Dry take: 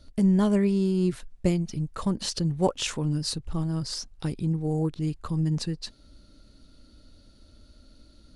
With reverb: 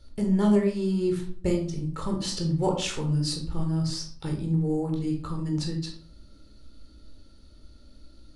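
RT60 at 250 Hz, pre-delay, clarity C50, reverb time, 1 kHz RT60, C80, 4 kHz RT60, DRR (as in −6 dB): 0.70 s, 17 ms, 7.0 dB, 0.55 s, 0.45 s, 11.0 dB, 0.35 s, 1.5 dB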